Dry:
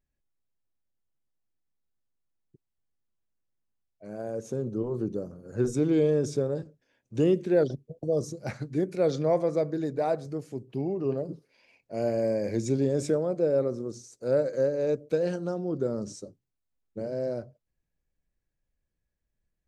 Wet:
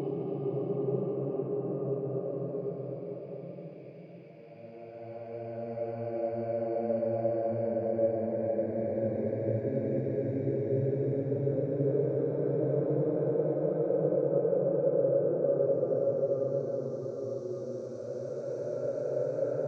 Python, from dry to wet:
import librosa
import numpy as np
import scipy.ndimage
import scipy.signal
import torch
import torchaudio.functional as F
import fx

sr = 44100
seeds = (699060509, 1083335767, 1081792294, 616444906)

y = scipy.signal.sosfilt(scipy.signal.butter(2, 3400.0, 'lowpass', fs=sr, output='sos'), x)
y = fx.peak_eq(y, sr, hz=260.0, db=-9.0, octaves=0.31)
y = fx.env_lowpass_down(y, sr, base_hz=940.0, full_db=-25.0)
y = fx.paulstretch(y, sr, seeds[0], factor=5.7, window_s=1.0, from_s=10.84)
y = F.gain(torch.from_numpy(y), -1.5).numpy()